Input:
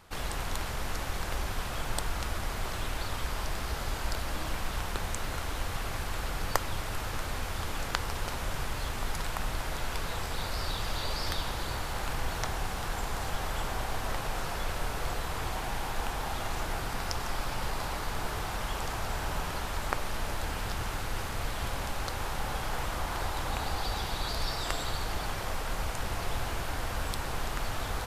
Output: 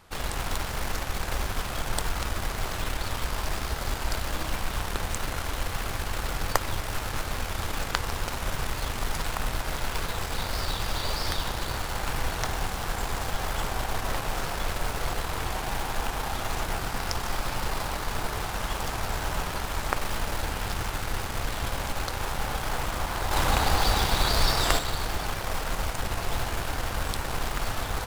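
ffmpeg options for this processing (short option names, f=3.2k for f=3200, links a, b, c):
-filter_complex "[0:a]asplit=2[a][b];[b]acrusher=bits=4:mix=0:aa=0.000001,volume=-9.5dB[c];[a][c]amix=inputs=2:normalize=0,asettb=1/sr,asplit=3[d][e][f];[d]atrim=end=23.314[g];[e]atrim=start=23.31:end=24.79,asetpts=PTS-STARTPTS,afade=t=in:d=0.004:c=qsin,afade=t=out:st=1.476:d=0.004:c=qsin,acontrast=48[h];[f]atrim=start=24.786[i];[g][h]acrossfade=d=0.004:c1=hsin:c2=qsin[j];[j][i]acrossfade=d=0.004:c1=qsin:c2=hsin,volume=1dB"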